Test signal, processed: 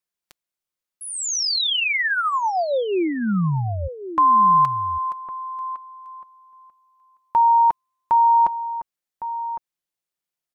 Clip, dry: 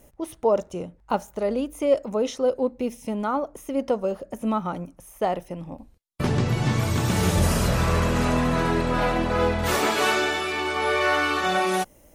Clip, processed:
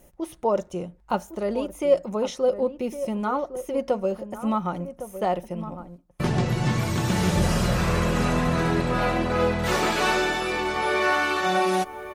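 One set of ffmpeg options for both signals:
ffmpeg -i in.wav -filter_complex "[0:a]aecho=1:1:5.6:0.36,acrossover=split=7300[link_01][link_02];[link_02]acompressor=threshold=-41dB:ratio=4:attack=1:release=60[link_03];[link_01][link_03]amix=inputs=2:normalize=0,asplit=2[link_04][link_05];[link_05]adelay=1108,volume=-11dB,highshelf=frequency=4000:gain=-24.9[link_06];[link_04][link_06]amix=inputs=2:normalize=0,volume=-1dB" out.wav

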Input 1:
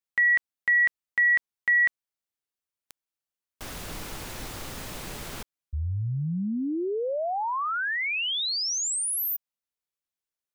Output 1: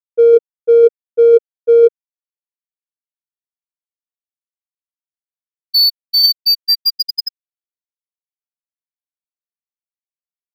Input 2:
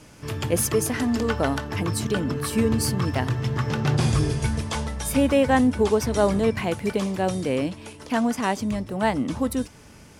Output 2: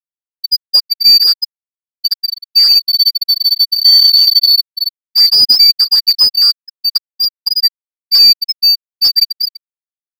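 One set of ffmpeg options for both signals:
ffmpeg -i in.wav -filter_complex "[0:a]afftfilt=real='real(if(lt(b,272),68*(eq(floor(b/68),0)*1+eq(floor(b/68),1)*2+eq(floor(b/68),2)*3+eq(floor(b/68),3)*0)+mod(b,68),b),0)':imag='imag(if(lt(b,272),68*(eq(floor(b/68),0)*1+eq(floor(b/68),1)*2+eq(floor(b/68),2)*3+eq(floor(b/68),3)*0)+mod(b,68),b),0)':win_size=2048:overlap=0.75,lowshelf=frequency=150:gain=2.5,aecho=1:1:155:0.0944,crystalizer=i=1.5:c=0,lowpass=frequency=4000:width=0.5412,lowpass=frequency=4000:width=1.3066,aemphasis=mode=production:type=75kf,asplit=2[link_01][link_02];[link_02]adelay=13,volume=-4dB[link_03];[link_01][link_03]amix=inputs=2:normalize=0,afftfilt=real='re*gte(hypot(re,im),1.26)':imag='im*gte(hypot(re,im),1.26)':win_size=1024:overlap=0.75,adynamicsmooth=sensitivity=5:basefreq=1700,alimiter=level_in=12dB:limit=-1dB:release=50:level=0:latency=1,volume=-1dB" out.wav

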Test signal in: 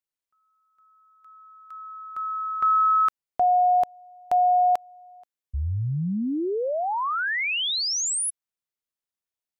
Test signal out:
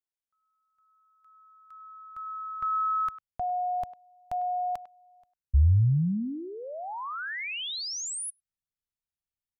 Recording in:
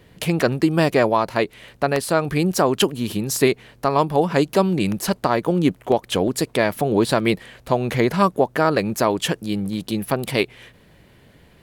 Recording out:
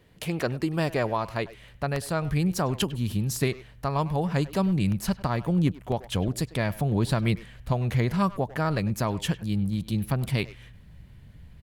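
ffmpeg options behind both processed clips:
ffmpeg -i in.wav -filter_complex "[0:a]asplit=2[link_01][link_02];[link_02]adelay=100,highpass=300,lowpass=3400,asoftclip=type=hard:threshold=-13.5dB,volume=-15dB[link_03];[link_01][link_03]amix=inputs=2:normalize=0,asubboost=boost=9.5:cutoff=130,volume=-8.5dB" out.wav

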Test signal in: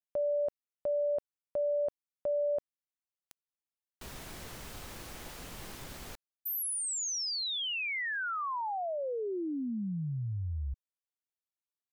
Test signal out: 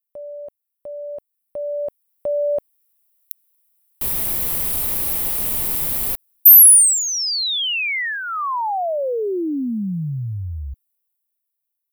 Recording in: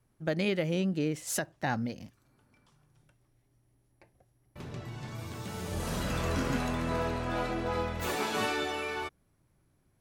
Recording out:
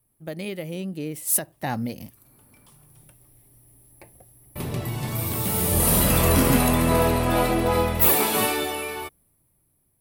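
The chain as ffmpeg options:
ffmpeg -i in.wav -af "dynaudnorm=framelen=320:gausssize=13:maxgain=16dB,equalizer=frequency=1500:width=3.6:gain=-6.5,aexciter=amount=4.9:drive=8.6:freq=9100,volume=-3dB" out.wav

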